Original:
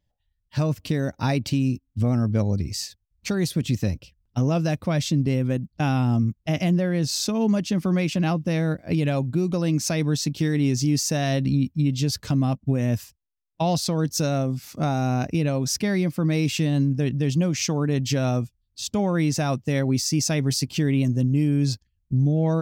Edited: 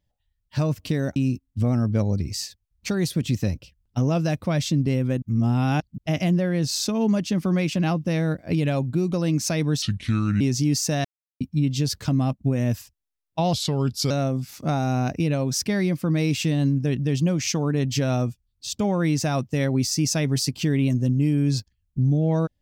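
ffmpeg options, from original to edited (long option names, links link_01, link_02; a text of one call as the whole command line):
ffmpeg -i in.wav -filter_complex "[0:a]asplit=10[link_01][link_02][link_03][link_04][link_05][link_06][link_07][link_08][link_09][link_10];[link_01]atrim=end=1.162[link_11];[link_02]atrim=start=1.558:end=5.622[link_12];[link_03]atrim=start=5.618:end=6.382,asetpts=PTS-STARTPTS,areverse[link_13];[link_04]atrim=start=6.378:end=10.224[link_14];[link_05]atrim=start=10.22:end=10.63,asetpts=PTS-STARTPTS,asetrate=30870,aresample=44100[link_15];[link_06]atrim=start=10.626:end=11.27,asetpts=PTS-STARTPTS,afade=type=out:start_time=0.64:duration=0.004:curve=hsin[link_16];[link_07]atrim=start=11.27:end=11.63,asetpts=PTS-STARTPTS,volume=0[link_17];[link_08]atrim=start=11.63:end=13.764,asetpts=PTS-STARTPTS,afade=type=in:duration=0.004:curve=hsin[link_18];[link_09]atrim=start=13.76:end=14.25,asetpts=PTS-STARTPTS,asetrate=37926,aresample=44100[link_19];[link_10]atrim=start=14.246[link_20];[link_11][link_12]acrossfade=duration=0.004:curve1=hsin:curve2=hsin[link_21];[link_21][link_13]acrossfade=duration=0.004:curve1=hsin:curve2=hsin[link_22];[link_22][link_14]acrossfade=duration=0.004:curve1=hsin:curve2=hsin[link_23];[link_23][link_15]acrossfade=duration=0.004:curve1=hsin:curve2=hsin[link_24];[link_16][link_17][link_18]concat=n=3:v=0:a=1[link_25];[link_24][link_25]acrossfade=duration=0.004:curve1=hsin:curve2=hsin[link_26];[link_26][link_19]acrossfade=duration=0.004:curve1=hsin:curve2=hsin[link_27];[link_27][link_20]acrossfade=duration=0.004:curve1=hsin:curve2=hsin" out.wav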